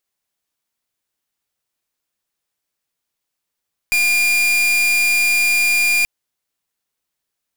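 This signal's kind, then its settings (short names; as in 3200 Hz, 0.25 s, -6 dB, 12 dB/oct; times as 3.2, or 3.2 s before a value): pulse 2410 Hz, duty 41% -15.5 dBFS 2.13 s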